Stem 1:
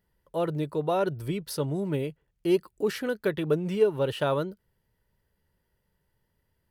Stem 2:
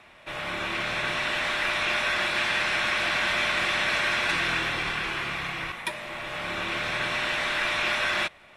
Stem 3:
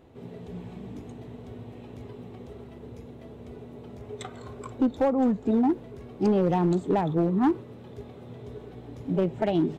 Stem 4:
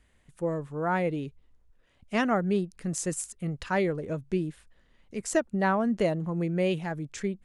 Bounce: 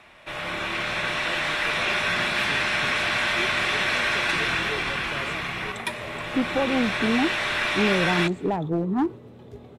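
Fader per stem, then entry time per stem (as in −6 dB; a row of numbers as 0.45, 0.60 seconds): −13.0, +1.5, −1.0, −18.0 decibels; 0.90, 0.00, 1.55, 0.00 seconds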